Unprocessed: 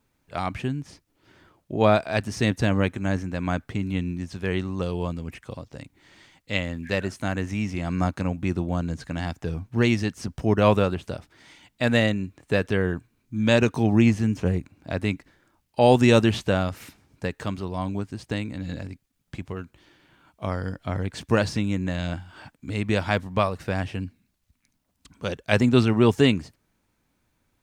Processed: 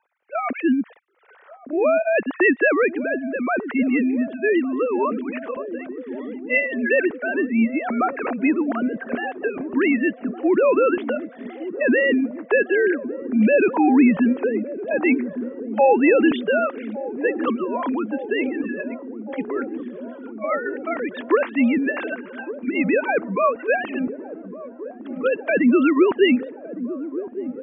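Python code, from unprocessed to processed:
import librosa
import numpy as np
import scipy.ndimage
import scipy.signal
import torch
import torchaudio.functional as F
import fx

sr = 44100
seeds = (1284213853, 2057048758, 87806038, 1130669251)

p1 = fx.sine_speech(x, sr)
p2 = scipy.signal.sosfilt(scipy.signal.butter(2, 2200.0, 'lowpass', fs=sr, output='sos'), p1)
p3 = fx.low_shelf(p2, sr, hz=370.0, db=-10.5)
p4 = fx.over_compress(p3, sr, threshold_db=-29.0, ratio=-0.5)
p5 = p3 + (p4 * 10.0 ** (0.0 / 20.0))
p6 = fx.rotary_switch(p5, sr, hz=0.7, then_hz=7.5, switch_at_s=15.42)
p7 = p6 + fx.echo_wet_lowpass(p6, sr, ms=1161, feedback_pct=79, hz=540.0, wet_db=-12.0, dry=0)
y = p7 * 10.0 ** (7.0 / 20.0)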